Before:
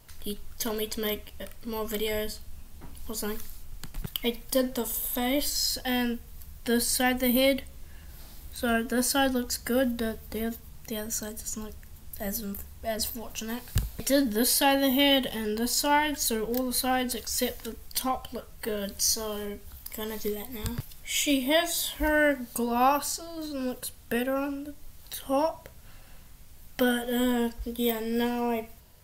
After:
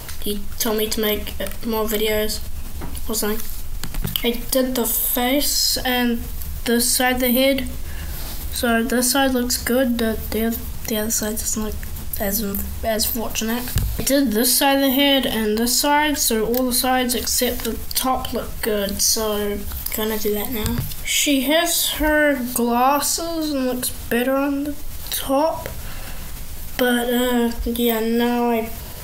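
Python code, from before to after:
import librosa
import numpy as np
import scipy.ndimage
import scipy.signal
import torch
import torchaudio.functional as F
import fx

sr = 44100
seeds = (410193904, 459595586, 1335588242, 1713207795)

y = fx.hum_notches(x, sr, base_hz=50, count=5)
y = fx.env_flatten(y, sr, amount_pct=50)
y = y * 10.0 ** (5.0 / 20.0)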